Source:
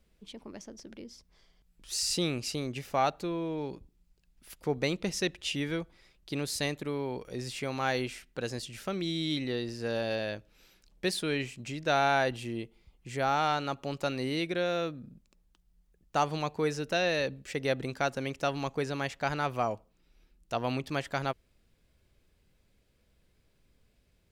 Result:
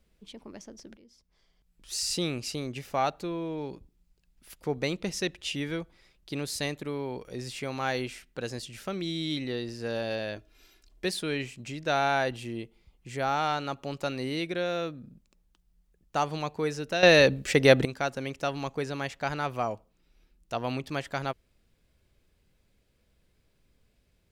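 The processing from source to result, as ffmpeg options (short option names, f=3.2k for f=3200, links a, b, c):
-filter_complex "[0:a]asettb=1/sr,asplit=3[a][b][c];[a]atrim=end=10.364[d];[b]atrim=start=10.36:end=11.05,asetpts=PTS-STARTPTS,afade=t=in:d=0.004:c=qsin,afade=t=out:st=0.686:d=0.004:c=qsin,aecho=1:1:2.9:0.65,atrim=end_sample=30429[e];[c]atrim=start=11.046[f];[d][e]acrossfade=d=0.004:c1=hsin:c2=qsin[g];[g][f]acrossfade=d=0.004:c1=qsin:c2=hsin,asplit=4[h][i][j][k];[h]atrim=end=0.97,asetpts=PTS-STARTPTS,afade=t=out:st=0.966:d=0.004:c=hsin:silence=0.188365[l];[i]atrim=start=0.97:end=17.032,asetpts=PTS-STARTPTS,afade=t=in:d=0.97:silence=0.188365[m];[j]atrim=start=17.028:end=17.852,asetpts=PTS-STARTPTS,volume=11.5dB[n];[k]atrim=start=17.848[o];[l][m]concat=n=2:v=0:a=1[p];[p][n]acrossfade=d=0.004:c1=hsin:c2=hsin[q];[q][o]acrossfade=d=0.004:c1=hsin:c2=hsin"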